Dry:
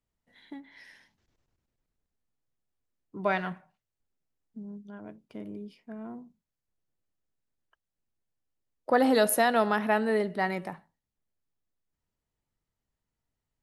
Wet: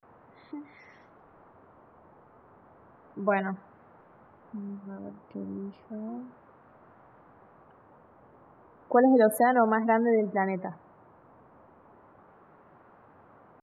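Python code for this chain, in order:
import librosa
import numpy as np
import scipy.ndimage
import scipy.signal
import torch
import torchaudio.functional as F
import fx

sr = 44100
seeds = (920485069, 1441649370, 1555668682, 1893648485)

y = fx.spec_gate(x, sr, threshold_db=-20, keep='strong')
y = fx.high_shelf(y, sr, hz=2000.0, db=-11.5)
y = fx.dmg_noise_band(y, sr, seeds[0], low_hz=75.0, high_hz=1200.0, level_db=-60.0)
y = fx.vibrato(y, sr, rate_hz=0.33, depth_cents=94.0)
y = F.gain(torch.from_numpy(y), 3.5).numpy()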